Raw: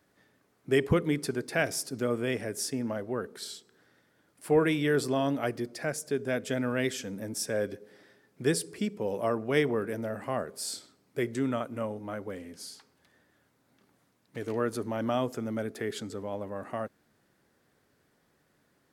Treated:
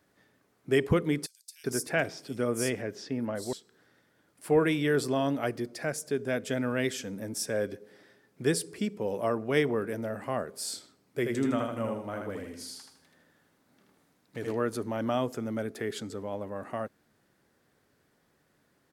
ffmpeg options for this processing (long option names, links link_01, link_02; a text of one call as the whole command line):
ffmpeg -i in.wav -filter_complex "[0:a]asettb=1/sr,asplit=3[link_01][link_02][link_03];[link_01]atrim=end=1.264[link_04];[link_02]atrim=start=1.26:end=3.53,asetpts=PTS-STARTPTS,afade=type=in:duration=0.004:curve=qsin,afade=type=out:start_time=2.266:duration=0.004:curve=qsin,acrossover=split=4700[link_05][link_06];[link_05]adelay=380[link_07];[link_07][link_06]amix=inputs=2:normalize=0,atrim=end_sample=100107[link_08];[link_03]atrim=start=3.526[link_09];[link_04][link_08]acrossfade=duration=0.004:curve1=hsin:curve2=qsin[link_10];[link_10][link_09]acrossfade=duration=0.004:curve1=qsin:curve2=hsin,asplit=3[link_11][link_12][link_13];[link_11]afade=type=out:start_time=11.24:duration=0.02[link_14];[link_12]aecho=1:1:79|158|237|316|395:0.668|0.261|0.102|0.0396|0.0155,afade=type=in:start_time=11.24:duration=0.02,afade=type=out:start_time=14.52:duration=0.02[link_15];[link_13]afade=type=in:start_time=14.52:duration=0.02[link_16];[link_14][link_15][link_16]amix=inputs=3:normalize=0" out.wav